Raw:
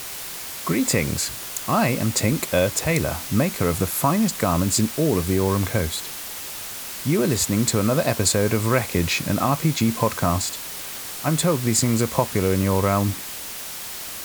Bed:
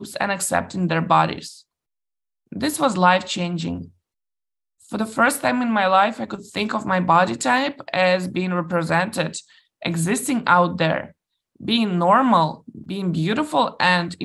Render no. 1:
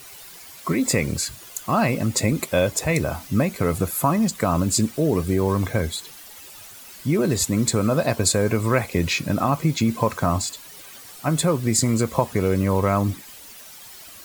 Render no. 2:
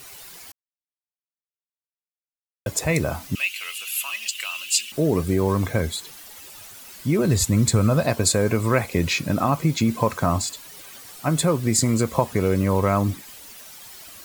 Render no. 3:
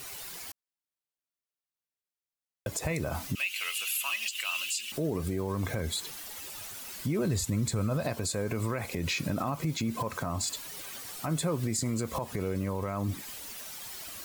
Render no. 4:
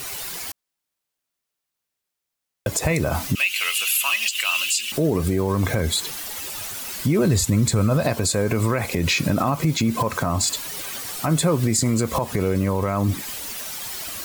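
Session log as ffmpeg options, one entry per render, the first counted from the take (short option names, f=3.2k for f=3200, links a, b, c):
-af "afftdn=nr=12:nf=-34"
-filter_complex "[0:a]asettb=1/sr,asplit=3[a][b][c];[a]atrim=end=3.354[d];[b]atrim=start=3.35:end=4.92,asetpts=PTS-STARTPTS,afade=t=in:d=0.004:c=qsin,afade=t=out:st=1.566:d=0.004:c=qsin,highpass=f=2.8k:t=q:w=15[e];[c]atrim=start=4.916[f];[d][e]acrossfade=d=0.004:c1=hsin:c2=qsin[g];[g][f]acrossfade=d=0.004:c1=qsin:c2=hsin,asplit=3[h][i][j];[h]afade=t=out:st=7.22:d=0.02[k];[i]asubboost=boost=2.5:cutoff=160,afade=t=in:st=7.22:d=0.02,afade=t=out:st=8.06:d=0.02[l];[j]afade=t=in:st=8.06:d=0.02[m];[k][l][m]amix=inputs=3:normalize=0,asplit=3[n][o][p];[n]atrim=end=0.52,asetpts=PTS-STARTPTS,afade=t=out:st=0.516:d=0.004:c=hsin[q];[o]atrim=start=0.52:end=2.66,asetpts=PTS-STARTPTS,volume=0[r];[p]atrim=start=2.66,asetpts=PTS-STARTPTS,afade=t=in:d=0.004:c=hsin[s];[q][r][s]concat=n=3:v=0:a=1"
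-af "acompressor=threshold=-24dB:ratio=2.5,alimiter=limit=-21.5dB:level=0:latency=1:release=82"
-af "volume=10.5dB"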